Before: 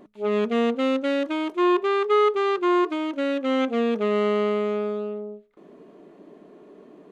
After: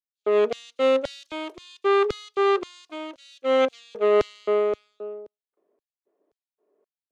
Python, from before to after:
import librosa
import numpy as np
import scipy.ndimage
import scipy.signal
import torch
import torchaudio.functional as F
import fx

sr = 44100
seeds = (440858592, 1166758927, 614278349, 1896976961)

y = fx.filter_lfo_highpass(x, sr, shape='square', hz=1.9, low_hz=470.0, high_hz=4900.0, q=1.8)
y = fx.band_widen(y, sr, depth_pct=100)